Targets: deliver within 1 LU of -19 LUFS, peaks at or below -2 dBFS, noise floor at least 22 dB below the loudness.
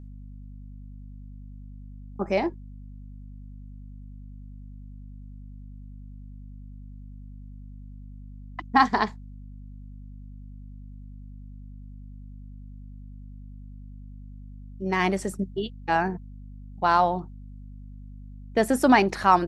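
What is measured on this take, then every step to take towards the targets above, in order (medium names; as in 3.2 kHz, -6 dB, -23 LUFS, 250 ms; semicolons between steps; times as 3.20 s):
hum 50 Hz; highest harmonic 250 Hz; hum level -39 dBFS; loudness -24.5 LUFS; peak level -4.5 dBFS; loudness target -19.0 LUFS
-> de-hum 50 Hz, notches 5; trim +5.5 dB; peak limiter -2 dBFS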